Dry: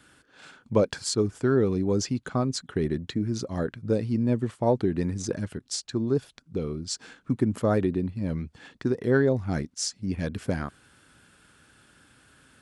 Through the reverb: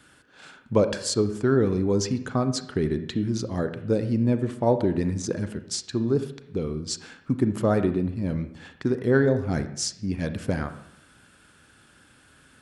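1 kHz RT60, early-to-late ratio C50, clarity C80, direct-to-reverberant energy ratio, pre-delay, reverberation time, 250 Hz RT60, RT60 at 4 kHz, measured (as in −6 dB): 0.75 s, 11.0 dB, 13.5 dB, 9.5 dB, 31 ms, 0.75 s, 0.80 s, 0.65 s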